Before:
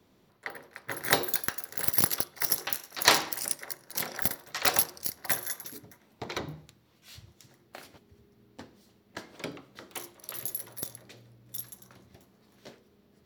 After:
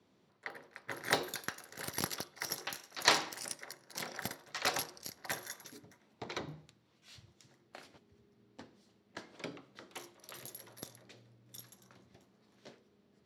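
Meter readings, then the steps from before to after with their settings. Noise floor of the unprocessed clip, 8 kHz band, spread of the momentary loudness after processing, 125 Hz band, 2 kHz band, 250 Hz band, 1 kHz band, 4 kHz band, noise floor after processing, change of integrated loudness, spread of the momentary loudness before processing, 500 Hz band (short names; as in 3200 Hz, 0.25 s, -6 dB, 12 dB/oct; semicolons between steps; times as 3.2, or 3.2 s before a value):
-65 dBFS, -9.5 dB, 22 LU, -7.0 dB, -5.5 dB, -5.5 dB, -5.5 dB, -6.0 dB, -71 dBFS, -9.5 dB, 19 LU, -5.5 dB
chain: BPF 100–8000 Hz; gain -5.5 dB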